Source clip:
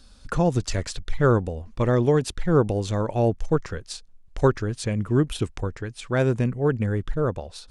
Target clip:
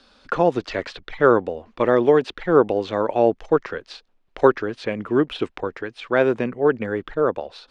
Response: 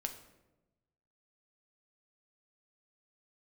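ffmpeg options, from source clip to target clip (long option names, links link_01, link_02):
-filter_complex "[0:a]acrossover=split=260 4300:gain=0.0794 1 0.0794[link_01][link_02][link_03];[link_01][link_02][link_03]amix=inputs=3:normalize=0,acrossover=split=4800[link_04][link_05];[link_05]acompressor=threshold=-59dB:ratio=4:attack=1:release=60[link_06];[link_04][link_06]amix=inputs=2:normalize=0,volume=6.5dB"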